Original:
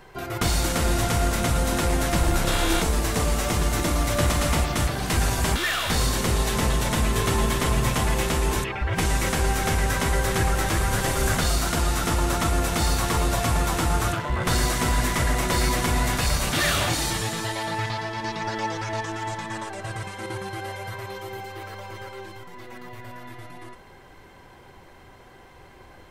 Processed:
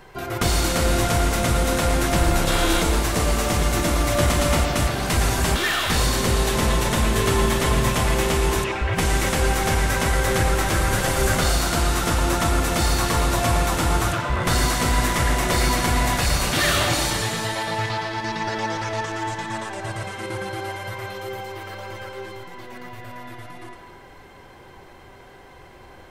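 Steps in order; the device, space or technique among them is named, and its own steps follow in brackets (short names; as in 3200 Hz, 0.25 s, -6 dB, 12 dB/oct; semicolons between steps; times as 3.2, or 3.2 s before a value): filtered reverb send (on a send: HPF 250 Hz + LPF 5200 Hz + reverb RT60 1.2 s, pre-delay 82 ms, DRR 4.5 dB); on the sum: gain +2 dB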